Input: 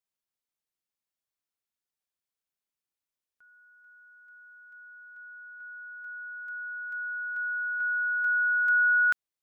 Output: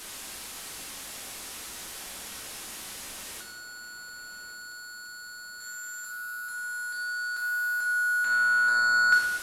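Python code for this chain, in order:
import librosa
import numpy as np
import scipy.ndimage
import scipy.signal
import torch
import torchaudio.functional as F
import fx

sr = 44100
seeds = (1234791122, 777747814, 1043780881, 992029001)

y = fx.delta_mod(x, sr, bps=64000, step_db=-40.5)
y = fx.echo_filtered(y, sr, ms=1134, feedback_pct=60, hz=1100.0, wet_db=-10)
y = fx.rev_gated(y, sr, seeds[0], gate_ms=280, shape='falling', drr_db=0.0)
y = y * 10.0 ** (4.5 / 20.0)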